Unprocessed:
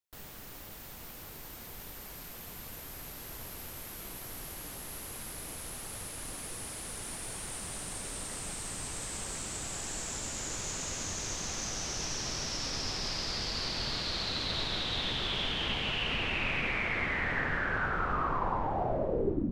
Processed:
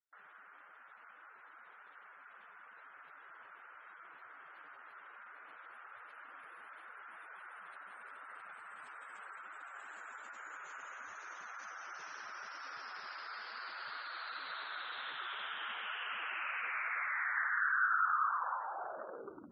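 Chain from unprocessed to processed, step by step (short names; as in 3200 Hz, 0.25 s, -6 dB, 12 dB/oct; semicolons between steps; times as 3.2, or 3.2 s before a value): one-sided clip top -26.5 dBFS, bottom -21.5 dBFS; band-pass 1400 Hz, Q 3.9; spectral gate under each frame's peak -20 dB strong; gain +4 dB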